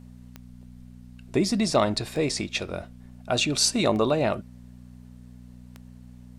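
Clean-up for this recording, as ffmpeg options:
ffmpeg -i in.wav -af "adeclick=threshold=4,bandreject=frequency=61.2:width_type=h:width=4,bandreject=frequency=122.4:width_type=h:width=4,bandreject=frequency=183.6:width_type=h:width=4,bandreject=frequency=244.8:width_type=h:width=4" out.wav

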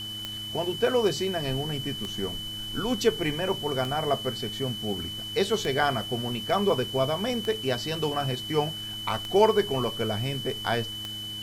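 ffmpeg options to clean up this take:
ffmpeg -i in.wav -af "adeclick=threshold=4,bandreject=frequency=106.6:width_type=h:width=4,bandreject=frequency=213.2:width_type=h:width=4,bandreject=frequency=319.8:width_type=h:width=4,bandreject=frequency=3000:width=30,afwtdn=0.0045" out.wav

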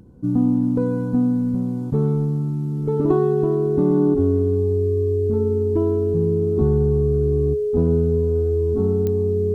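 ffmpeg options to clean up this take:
ffmpeg -i in.wav -af "adeclick=threshold=4,bandreject=frequency=420:width=30" out.wav

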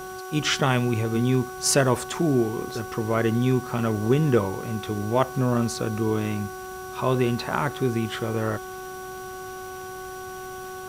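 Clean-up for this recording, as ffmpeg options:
ffmpeg -i in.wav -af "adeclick=threshold=4,bandreject=frequency=373.3:width_type=h:width=4,bandreject=frequency=746.6:width_type=h:width=4,bandreject=frequency=1119.9:width_type=h:width=4,bandreject=frequency=1493.2:width_type=h:width=4,bandreject=frequency=5800:width=30,afwtdn=0.0045" out.wav

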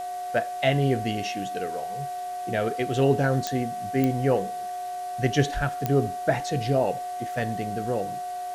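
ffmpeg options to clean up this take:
ffmpeg -i in.wav -af "adeclick=threshold=4,bandreject=frequency=381:width_type=h:width=4,bandreject=frequency=762:width_type=h:width=4,bandreject=frequency=1143:width_type=h:width=4,bandreject=frequency=1524:width_type=h:width=4,bandreject=frequency=1905:width_type=h:width=4,bandreject=frequency=720:width=30,afwtdn=0.004" out.wav

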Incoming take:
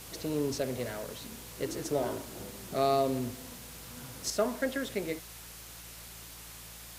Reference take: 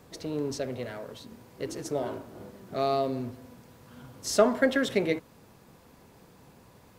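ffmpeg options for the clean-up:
ffmpeg -i in.wav -af "bandreject=frequency=56.5:width_type=h:width=4,bandreject=frequency=113:width_type=h:width=4,bandreject=frequency=169.5:width_type=h:width=4,afwtdn=0.0045,asetnsamples=nb_out_samples=441:pad=0,asendcmd='4.3 volume volume 8dB',volume=0dB" out.wav

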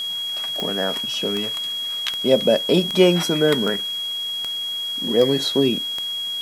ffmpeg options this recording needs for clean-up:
ffmpeg -i in.wav -af "adeclick=threshold=4,bandreject=frequency=3300:width=30,afwtdn=0.0079" out.wav

